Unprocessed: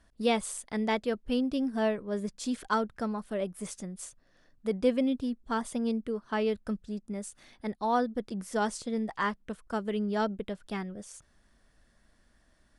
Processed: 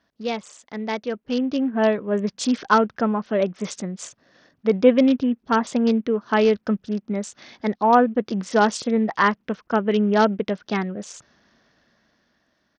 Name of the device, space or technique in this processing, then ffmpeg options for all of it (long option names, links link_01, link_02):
Bluetooth headset: -af "highpass=150,dynaudnorm=framelen=290:gausssize=11:maxgain=12.5dB,aresample=16000,aresample=44100" -ar 48000 -c:a sbc -b:a 64k